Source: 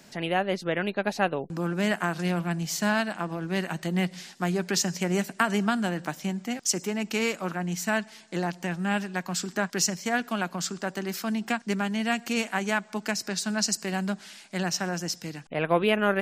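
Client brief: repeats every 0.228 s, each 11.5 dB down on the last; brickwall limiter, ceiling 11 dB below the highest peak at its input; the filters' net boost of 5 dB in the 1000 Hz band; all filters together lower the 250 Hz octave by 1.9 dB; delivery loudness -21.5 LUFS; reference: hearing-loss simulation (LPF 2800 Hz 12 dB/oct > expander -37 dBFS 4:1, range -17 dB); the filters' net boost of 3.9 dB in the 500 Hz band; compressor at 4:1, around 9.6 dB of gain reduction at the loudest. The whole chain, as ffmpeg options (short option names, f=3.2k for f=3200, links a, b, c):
-af "equalizer=f=250:t=o:g=-4,equalizer=f=500:t=o:g=4.5,equalizer=f=1k:t=o:g=5.5,acompressor=threshold=-24dB:ratio=4,alimiter=limit=-18.5dB:level=0:latency=1,lowpass=2.8k,aecho=1:1:228|456|684:0.266|0.0718|0.0194,agate=range=-17dB:threshold=-37dB:ratio=4,volume=11dB"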